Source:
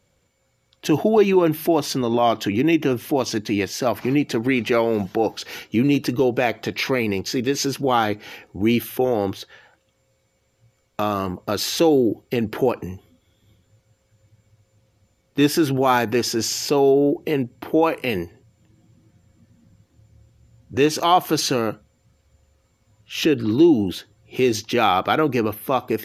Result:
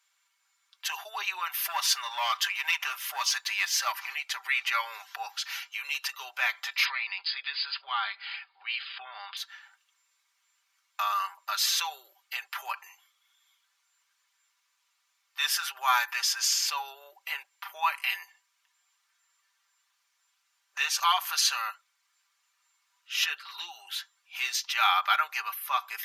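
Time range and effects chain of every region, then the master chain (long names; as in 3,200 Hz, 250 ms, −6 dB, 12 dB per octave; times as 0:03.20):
0:01.54–0:03.92: parametric band 140 Hz −5 dB 2.9 octaves + leveller curve on the samples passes 1
0:06.85–0:09.37: spectral tilt +2 dB per octave + downward compressor 2.5 to 1, threshold −23 dBFS + linear-phase brick-wall low-pass 5,000 Hz
whole clip: Butterworth high-pass 990 Hz 36 dB per octave; comb filter 5.1 ms, depth 68%; level −2.5 dB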